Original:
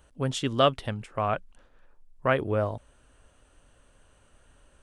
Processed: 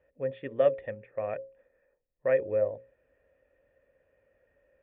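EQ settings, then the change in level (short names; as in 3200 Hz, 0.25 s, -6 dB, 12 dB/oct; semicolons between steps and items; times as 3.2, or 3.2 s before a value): vocal tract filter e; HPF 48 Hz; notches 60/120/180/240/300/360/420/480/540 Hz; +6.0 dB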